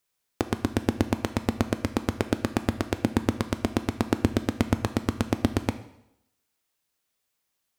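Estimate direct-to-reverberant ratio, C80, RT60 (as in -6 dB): 10.0 dB, 16.0 dB, 0.80 s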